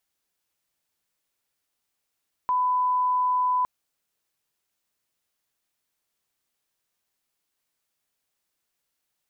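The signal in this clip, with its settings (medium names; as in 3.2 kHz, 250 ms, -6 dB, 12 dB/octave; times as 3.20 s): line-up tone -20 dBFS 1.16 s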